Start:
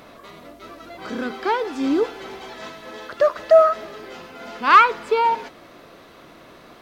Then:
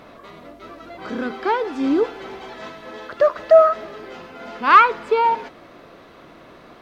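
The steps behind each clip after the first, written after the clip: high shelf 4600 Hz -10 dB; gain +1.5 dB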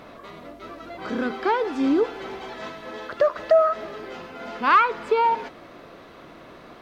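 compressor 2:1, threshold -18 dBFS, peak gain reduction 7 dB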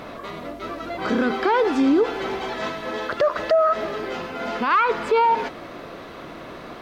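limiter -19 dBFS, peak gain reduction 11 dB; gain +7.5 dB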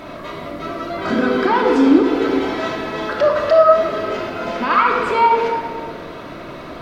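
shoebox room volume 2400 m³, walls mixed, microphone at 2.8 m

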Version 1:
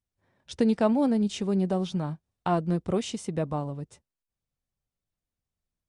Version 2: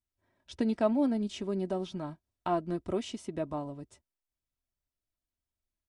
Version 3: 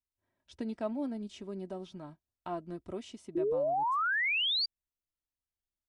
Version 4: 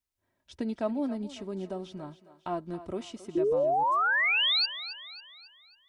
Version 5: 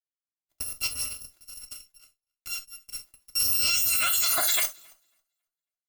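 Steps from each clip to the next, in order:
comb 3.1 ms, depth 53%; dynamic EQ 7700 Hz, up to -5 dB, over -50 dBFS, Q 0.82; gain -5.5 dB
painted sound rise, 3.35–4.66, 330–4800 Hz -22 dBFS; gain -8 dB
thinning echo 0.273 s, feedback 47%, high-pass 370 Hz, level -13.5 dB; gain +4.5 dB
FFT order left unsorted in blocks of 256 samples; added harmonics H 6 -34 dB, 7 -17 dB, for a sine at -18 dBFS; non-linear reverb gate 90 ms falling, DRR 5 dB

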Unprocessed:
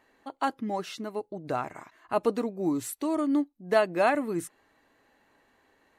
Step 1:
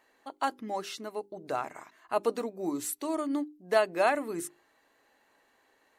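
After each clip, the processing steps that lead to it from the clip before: tone controls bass -9 dB, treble +4 dB; notches 50/100/150/200/250/300/350/400 Hz; gain -1.5 dB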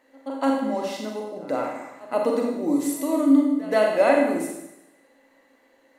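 small resonant body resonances 270/530/2000 Hz, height 16 dB, ringing for 70 ms; pre-echo 0.127 s -19.5 dB; Schroeder reverb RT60 0.92 s, combs from 33 ms, DRR 0 dB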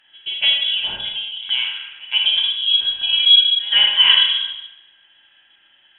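inverted band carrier 3600 Hz; gain +5 dB; AAC 96 kbps 32000 Hz

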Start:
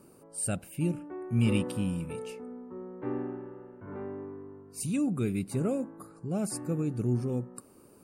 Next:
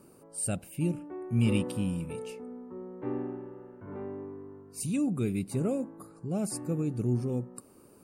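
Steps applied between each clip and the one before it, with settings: dynamic EQ 1500 Hz, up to -4 dB, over -59 dBFS, Q 1.8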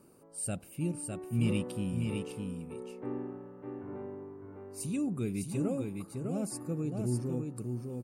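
echo 0.605 s -4.5 dB; gain -4 dB

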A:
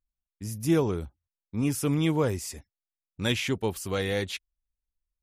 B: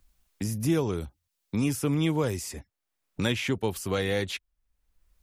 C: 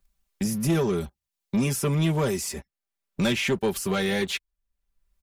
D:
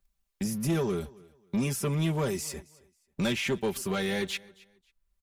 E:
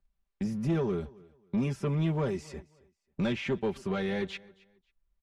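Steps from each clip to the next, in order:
three-band squash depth 70%
comb 5.1 ms, depth 73%; sample leveller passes 2; gain -4 dB
feedback echo 0.27 s, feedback 25%, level -23 dB; gain -4.5 dB
tape spacing loss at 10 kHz 23 dB

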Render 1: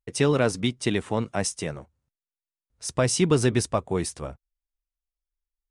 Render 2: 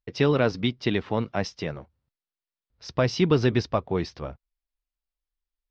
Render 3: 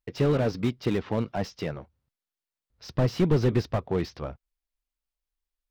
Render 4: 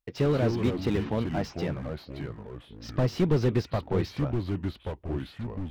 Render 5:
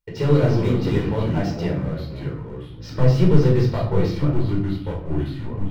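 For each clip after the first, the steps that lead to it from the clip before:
steep low-pass 5200 Hz 48 dB/oct
slew limiter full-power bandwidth 44 Hz
echoes that change speed 0.159 s, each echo -4 st, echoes 3, each echo -6 dB; gain -1.5 dB
shoebox room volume 800 m³, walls furnished, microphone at 4.6 m; gain -1 dB

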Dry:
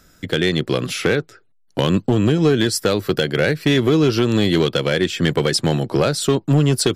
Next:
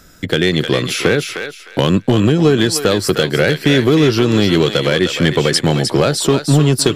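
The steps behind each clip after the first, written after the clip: in parallel at -2 dB: compressor, threshold -26 dBFS, peak gain reduction 14 dB; on the sum: thinning echo 0.307 s, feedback 26%, high-pass 920 Hz, level -5 dB; gain +2 dB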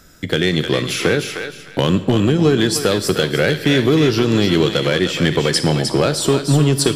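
on a send at -14 dB: bell 11000 Hz +9.5 dB 2.4 oct + reverb RT60 1.4 s, pre-delay 12 ms; on the sum: gain -2.5 dB

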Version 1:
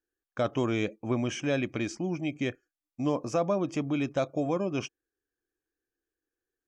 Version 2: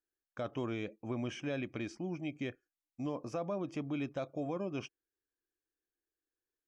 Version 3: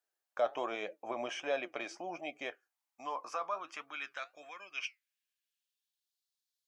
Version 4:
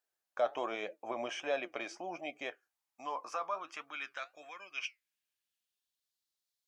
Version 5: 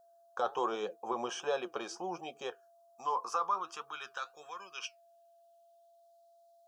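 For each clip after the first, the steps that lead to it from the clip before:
dynamic EQ 7100 Hz, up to -8 dB, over -60 dBFS, Q 1.7; limiter -21 dBFS, peak gain reduction 3.5 dB; gain -7.5 dB
high-pass sweep 670 Hz -> 4000 Hz, 2.33–6.22; flange 1.3 Hz, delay 3.9 ms, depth 5.2 ms, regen +72%; gain +8 dB
wow and flutter 19 cents
fixed phaser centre 420 Hz, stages 8; whine 680 Hz -68 dBFS; gain +7 dB

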